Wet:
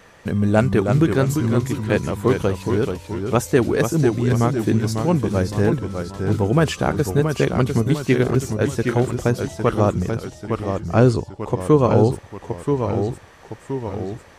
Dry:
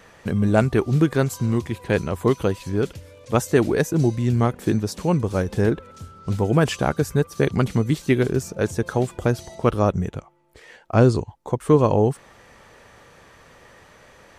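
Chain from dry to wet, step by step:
delay with pitch and tempo change per echo 285 ms, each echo −1 semitone, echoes 3, each echo −6 dB
level +1 dB

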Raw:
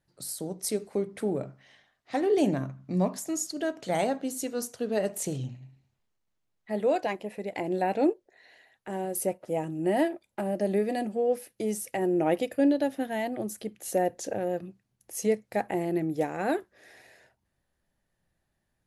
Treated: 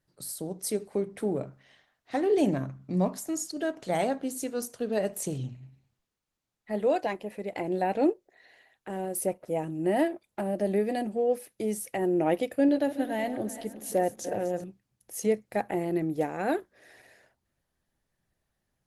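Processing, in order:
0:12.50–0:14.64: feedback delay that plays each chunk backwards 185 ms, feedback 59%, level −12 dB
Opus 20 kbit/s 48,000 Hz

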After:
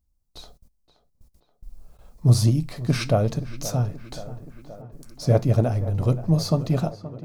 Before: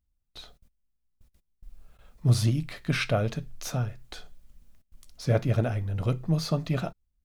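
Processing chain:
flat-topped bell 2,200 Hz −9 dB
tape delay 526 ms, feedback 77%, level −13 dB, low-pass 1,900 Hz
level +5.5 dB

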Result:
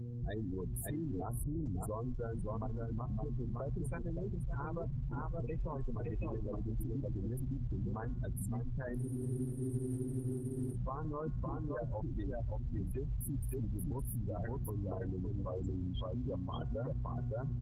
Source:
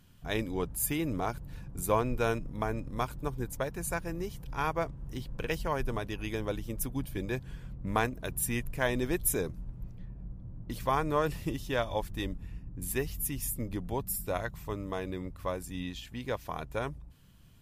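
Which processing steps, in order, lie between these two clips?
downward compressor 2 to 1, threshold −37 dBFS, peak gain reduction 8.5 dB
hum with harmonics 120 Hz, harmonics 4, −51 dBFS −4 dB per octave
on a send: single-tap delay 566 ms −3 dB
on the sum: gate on every frequency bin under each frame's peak −10 dB strong
speech leveller within 4 dB 0.5 s
parametric band 87 Hz +7.5 dB 2.4 octaves
brickwall limiter −32.5 dBFS, peak gain reduction 11 dB
hum removal 361 Hz, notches 8
frozen spectrum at 0:09.01, 1.72 s
level +1.5 dB
Opus 16 kbit/s 48,000 Hz

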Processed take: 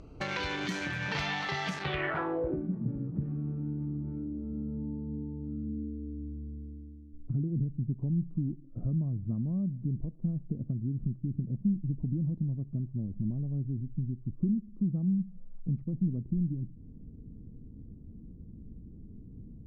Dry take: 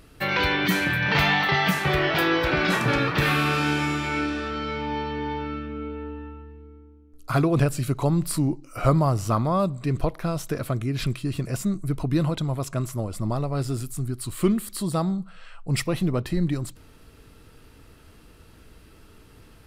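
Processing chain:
adaptive Wiener filter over 25 samples
0:05.69–0:07.81: flat-topped bell 910 Hz −11 dB
downward compressor 3 to 1, threshold −39 dBFS, peak gain reduction 17.5 dB
low-pass filter sweep 6,300 Hz → 210 Hz, 0:01.74–0:02.68
level +2.5 dB

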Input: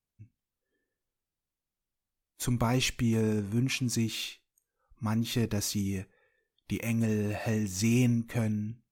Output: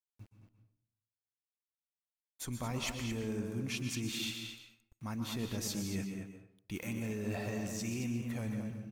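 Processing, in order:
low-shelf EQ 270 Hz −3.5 dB
reversed playback
downward compressor 6 to 1, threshold −38 dBFS, peak gain reduction 13.5 dB
reversed playback
centre clipping without the shift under −59.5 dBFS
slap from a distant wall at 38 metres, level −6 dB
on a send at −7 dB: convolution reverb RT60 0.55 s, pre-delay 117 ms
on the sum: level +1.5 dB

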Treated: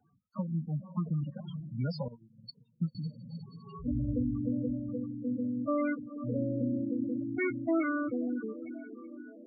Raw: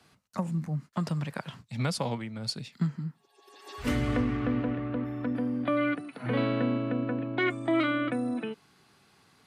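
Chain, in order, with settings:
feedback delay with all-pass diffusion 496 ms, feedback 64%, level −11.5 dB
spectral peaks only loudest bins 8
0:02.08–0:02.95: expander for the loud parts 2.5 to 1, over −40 dBFS
level −2.5 dB

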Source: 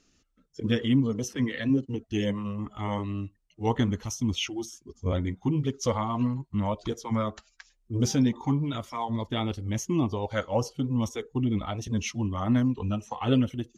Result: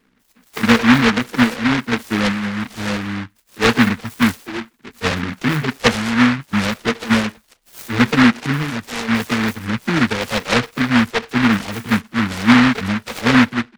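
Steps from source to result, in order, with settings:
every frequency bin delayed by itself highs early, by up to 392 ms
hollow resonant body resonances 240/440 Hz, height 16 dB, ringing for 35 ms
short delay modulated by noise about 1,500 Hz, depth 0.34 ms

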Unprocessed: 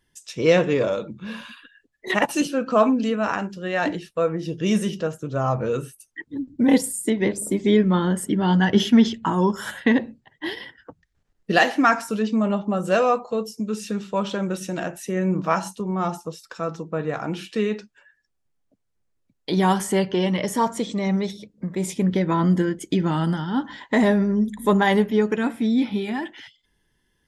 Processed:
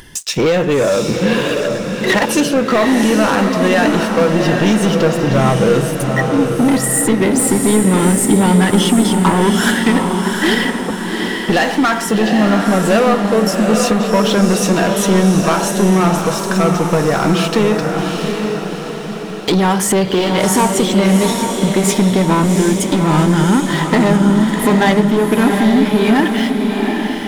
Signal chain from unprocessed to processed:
downward compressor, threshold −24 dBFS, peak gain reduction 13 dB
leveller curve on the samples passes 3
upward compression, threshold −24 dBFS
feedback delay with all-pass diffusion 767 ms, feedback 52%, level −4 dB
level +6 dB

